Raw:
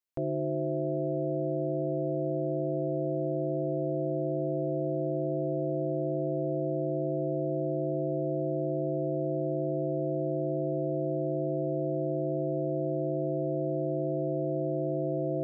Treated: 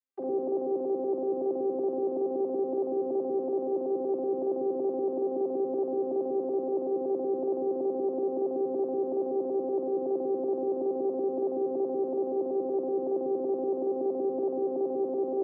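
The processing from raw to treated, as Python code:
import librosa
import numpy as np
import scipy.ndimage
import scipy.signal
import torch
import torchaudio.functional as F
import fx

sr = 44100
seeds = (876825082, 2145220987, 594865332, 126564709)

p1 = fx.vocoder_arp(x, sr, chord='bare fifth', root=60, every_ms=94)
p2 = p1 + fx.room_early_taps(p1, sr, ms=(46, 80), db=(-4.5, -11.0), dry=0)
y = p2 * librosa.db_to_amplitude(-1.5)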